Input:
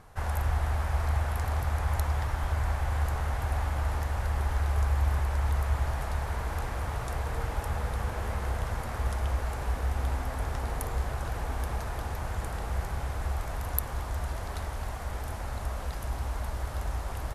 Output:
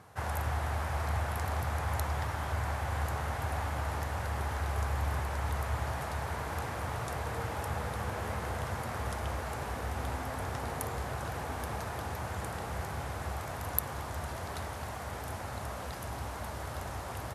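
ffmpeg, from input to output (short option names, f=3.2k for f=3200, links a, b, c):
-af "highpass=f=85:w=0.5412,highpass=f=85:w=1.3066"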